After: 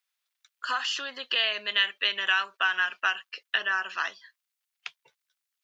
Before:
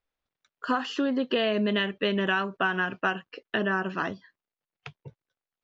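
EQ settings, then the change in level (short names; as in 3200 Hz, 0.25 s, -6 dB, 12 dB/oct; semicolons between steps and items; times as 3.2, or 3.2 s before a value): HPF 1200 Hz 12 dB/oct; high shelf 2200 Hz +11 dB; 0.0 dB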